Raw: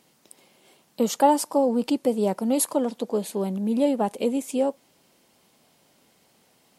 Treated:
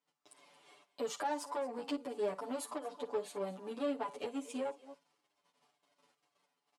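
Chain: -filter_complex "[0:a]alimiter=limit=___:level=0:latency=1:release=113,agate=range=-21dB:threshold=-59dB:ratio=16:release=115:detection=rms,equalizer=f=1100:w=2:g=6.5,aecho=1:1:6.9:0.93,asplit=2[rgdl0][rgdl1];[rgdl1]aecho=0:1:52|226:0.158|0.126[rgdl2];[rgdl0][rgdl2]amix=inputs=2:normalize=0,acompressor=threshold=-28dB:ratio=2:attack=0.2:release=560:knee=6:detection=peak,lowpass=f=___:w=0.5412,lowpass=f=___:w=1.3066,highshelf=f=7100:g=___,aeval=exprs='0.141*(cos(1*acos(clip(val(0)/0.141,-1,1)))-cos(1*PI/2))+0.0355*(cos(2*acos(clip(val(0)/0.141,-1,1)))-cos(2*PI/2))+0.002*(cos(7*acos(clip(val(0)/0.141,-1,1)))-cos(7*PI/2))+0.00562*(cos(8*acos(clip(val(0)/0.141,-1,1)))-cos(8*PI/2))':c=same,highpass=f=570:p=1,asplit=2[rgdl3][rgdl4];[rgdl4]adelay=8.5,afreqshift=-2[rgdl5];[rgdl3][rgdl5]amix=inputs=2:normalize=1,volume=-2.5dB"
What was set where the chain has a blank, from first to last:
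-14.5dB, 11000, 11000, -10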